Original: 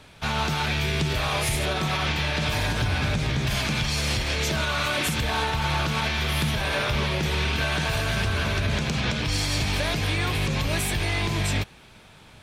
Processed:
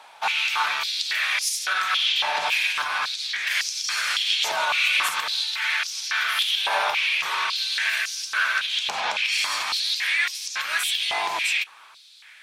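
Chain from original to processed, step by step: stepped high-pass 3.6 Hz 840–5500 Hz

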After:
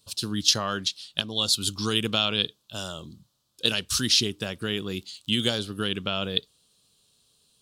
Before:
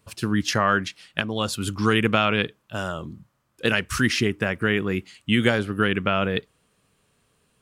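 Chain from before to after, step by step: 4.94–5.67 crackle 53/s -39 dBFS; resonant high shelf 2800 Hz +11 dB, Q 3; gain -7 dB

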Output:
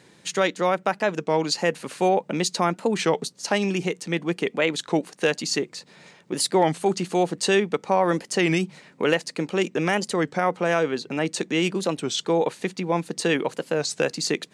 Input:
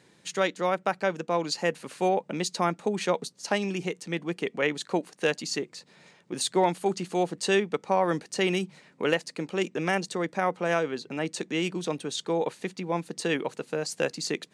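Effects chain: in parallel at 0 dB: limiter -19 dBFS, peak gain reduction 7.5 dB; on the sum: record warp 33 1/3 rpm, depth 160 cents

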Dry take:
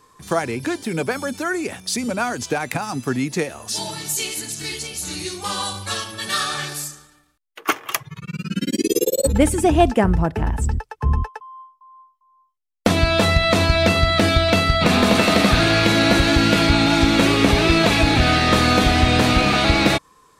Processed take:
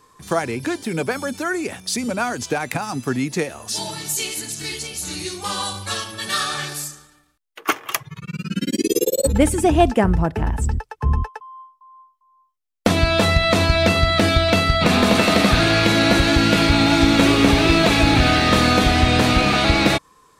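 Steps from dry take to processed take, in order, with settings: 16.45–18.69 lo-fi delay 93 ms, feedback 80%, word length 7-bit, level -14 dB

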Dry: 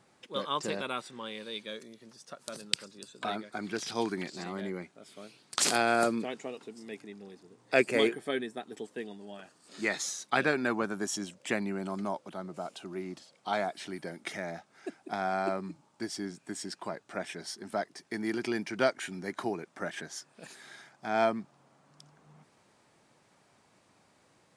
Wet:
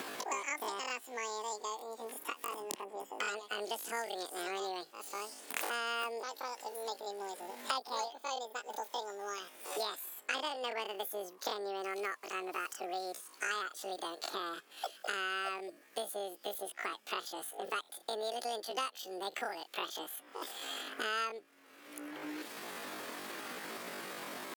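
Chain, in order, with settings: pitch shift +12 st; three-band squash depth 100%; gain -4.5 dB

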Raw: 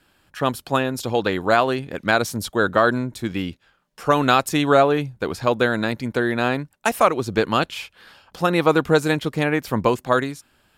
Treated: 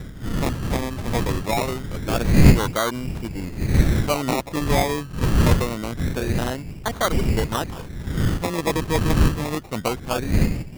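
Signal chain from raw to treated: wind noise 160 Hz -16 dBFS; decimation with a swept rate 24×, swing 60% 0.25 Hz; gain -6 dB

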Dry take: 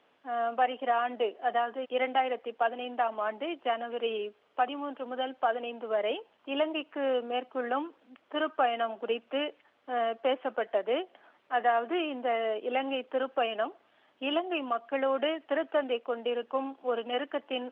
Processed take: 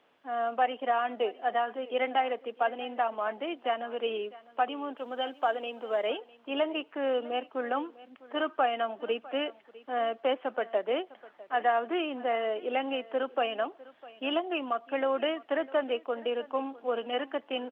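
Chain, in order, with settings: 4.97–6.07 tone controls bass -4 dB, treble +10 dB; on a send: echo 0.653 s -20 dB

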